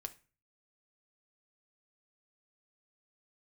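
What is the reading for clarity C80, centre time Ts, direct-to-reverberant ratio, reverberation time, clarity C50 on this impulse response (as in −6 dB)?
23.5 dB, 4 ms, 7.5 dB, 0.35 s, 17.5 dB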